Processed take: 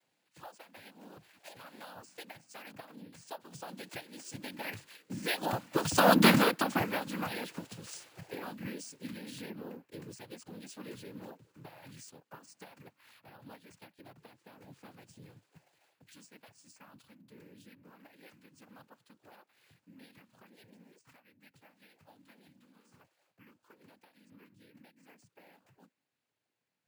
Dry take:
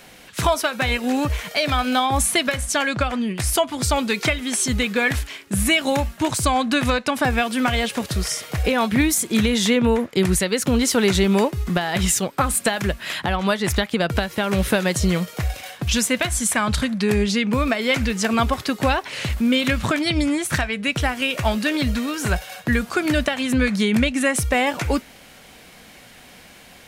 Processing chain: Doppler pass-by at 6.19, 26 m/s, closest 4.4 m; noise vocoder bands 8; careless resampling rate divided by 3×, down none, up hold

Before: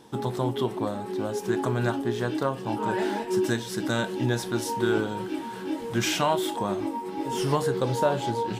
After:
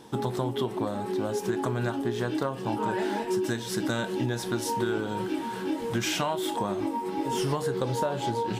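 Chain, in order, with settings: compressor, threshold -27 dBFS, peak gain reduction 9.5 dB; gain +2.5 dB

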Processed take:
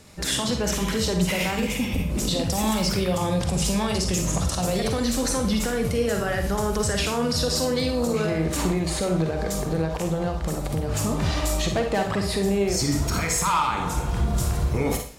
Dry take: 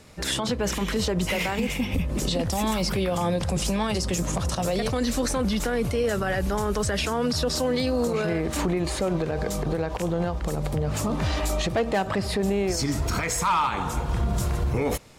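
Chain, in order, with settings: tone controls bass +2 dB, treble +4 dB; Schroeder reverb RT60 0.43 s, DRR 4 dB; gain -1 dB

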